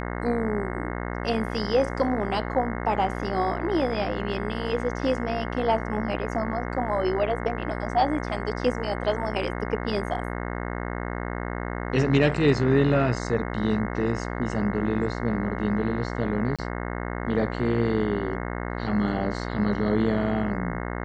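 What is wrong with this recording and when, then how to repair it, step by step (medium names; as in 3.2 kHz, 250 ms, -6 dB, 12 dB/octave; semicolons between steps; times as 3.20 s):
buzz 60 Hz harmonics 36 -31 dBFS
16.56–16.59 s: dropout 26 ms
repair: de-hum 60 Hz, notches 36; interpolate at 16.56 s, 26 ms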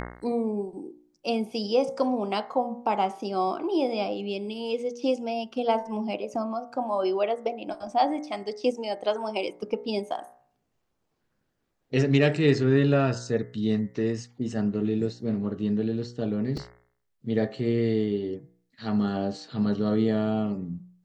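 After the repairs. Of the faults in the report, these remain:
nothing left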